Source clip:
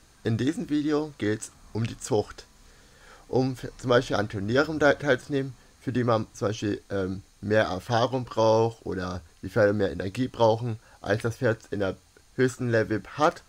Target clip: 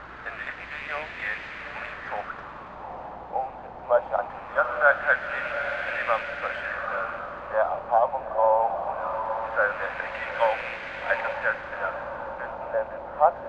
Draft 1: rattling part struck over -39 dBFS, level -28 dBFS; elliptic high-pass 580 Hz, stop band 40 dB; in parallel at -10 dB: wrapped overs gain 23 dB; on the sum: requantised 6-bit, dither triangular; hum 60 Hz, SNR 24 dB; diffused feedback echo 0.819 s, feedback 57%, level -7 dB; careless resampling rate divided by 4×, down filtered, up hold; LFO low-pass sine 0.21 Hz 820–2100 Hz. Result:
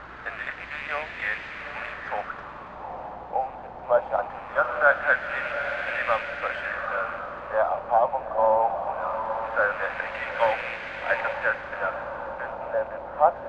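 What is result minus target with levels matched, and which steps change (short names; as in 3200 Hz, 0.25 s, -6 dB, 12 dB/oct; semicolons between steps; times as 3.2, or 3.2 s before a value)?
wrapped overs: distortion -11 dB
change: wrapped overs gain 33.5 dB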